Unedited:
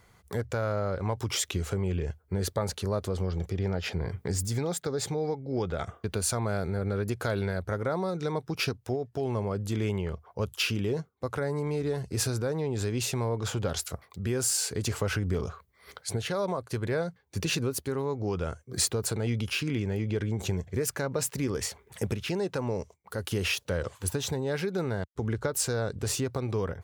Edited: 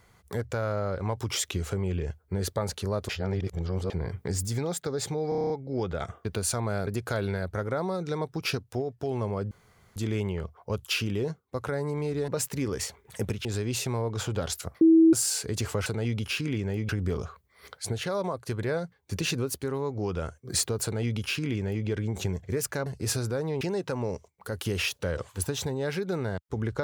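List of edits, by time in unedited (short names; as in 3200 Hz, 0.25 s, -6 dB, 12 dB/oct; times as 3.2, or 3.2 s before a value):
3.09–3.9 reverse
5.29 stutter 0.03 s, 8 plays
6.66–7.01 cut
9.65 insert room tone 0.45 s
11.97–12.72 swap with 21.1–22.27
14.08–14.4 bleep 325 Hz -13.5 dBFS
19.08–20.11 copy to 15.13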